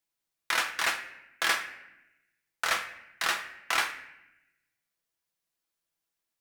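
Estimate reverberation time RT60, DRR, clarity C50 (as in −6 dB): 0.85 s, 3.0 dB, 10.0 dB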